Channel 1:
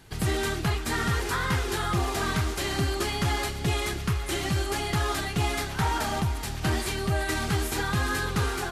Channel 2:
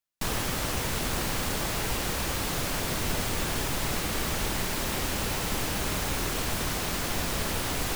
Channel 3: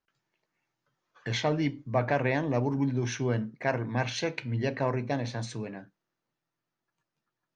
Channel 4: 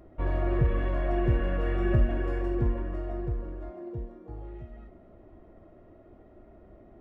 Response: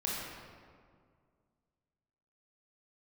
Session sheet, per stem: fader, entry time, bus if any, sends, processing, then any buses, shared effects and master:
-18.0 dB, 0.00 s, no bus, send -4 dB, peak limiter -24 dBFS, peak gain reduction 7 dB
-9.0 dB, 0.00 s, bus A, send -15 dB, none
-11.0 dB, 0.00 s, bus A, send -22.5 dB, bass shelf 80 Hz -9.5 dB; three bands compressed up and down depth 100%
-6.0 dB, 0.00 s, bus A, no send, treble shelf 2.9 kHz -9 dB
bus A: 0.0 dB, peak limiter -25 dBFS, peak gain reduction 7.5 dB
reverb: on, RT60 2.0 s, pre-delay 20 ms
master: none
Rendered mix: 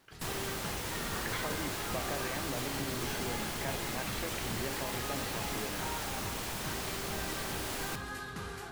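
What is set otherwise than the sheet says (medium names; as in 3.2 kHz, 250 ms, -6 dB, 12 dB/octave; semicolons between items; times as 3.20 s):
stem 1: missing peak limiter -24 dBFS, peak gain reduction 7 dB; stem 4: muted; master: extra bass shelf 150 Hz -7 dB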